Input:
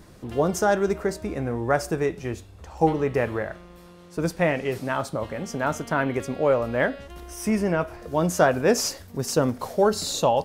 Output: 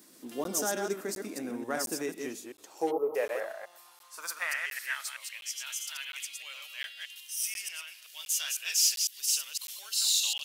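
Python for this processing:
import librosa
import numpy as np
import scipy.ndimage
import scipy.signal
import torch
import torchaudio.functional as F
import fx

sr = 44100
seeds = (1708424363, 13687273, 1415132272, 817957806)

p1 = fx.reverse_delay(x, sr, ms=126, wet_db=-4.0)
p2 = scipy.signal.sosfilt(scipy.signal.butter(2, 98.0, 'highpass', fs=sr, output='sos'), p1)
p3 = librosa.effects.preemphasis(p2, coef=0.9, zi=[0.0])
p4 = np.clip(10.0 ** (31.0 / 20.0) * p3, -1.0, 1.0) / 10.0 ** (31.0 / 20.0)
p5 = p3 + (p4 * 10.0 ** (-8.0 / 20.0))
p6 = fx.filter_sweep_highpass(p5, sr, from_hz=260.0, to_hz=2900.0, start_s=2.34, end_s=5.53, q=3.6)
p7 = fx.spec_box(p6, sr, start_s=2.91, length_s=0.24, low_hz=1400.0, high_hz=11000.0, gain_db=-29)
y = fx.buffer_crackle(p7, sr, first_s=0.44, period_s=0.71, block=512, kind='zero')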